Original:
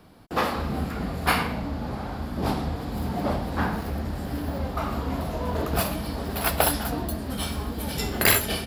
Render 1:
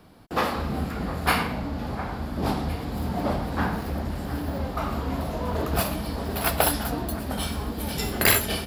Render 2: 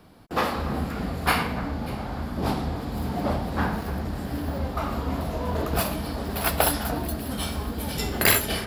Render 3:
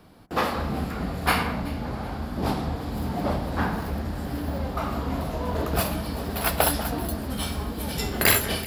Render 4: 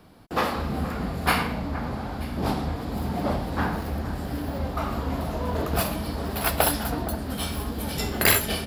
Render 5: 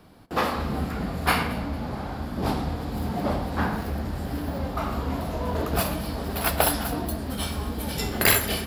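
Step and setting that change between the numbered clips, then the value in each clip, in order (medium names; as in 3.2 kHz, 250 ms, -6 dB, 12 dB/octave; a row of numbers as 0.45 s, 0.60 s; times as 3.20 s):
echo whose repeats swap between lows and highs, time: 707 ms, 295 ms, 190 ms, 467 ms, 113 ms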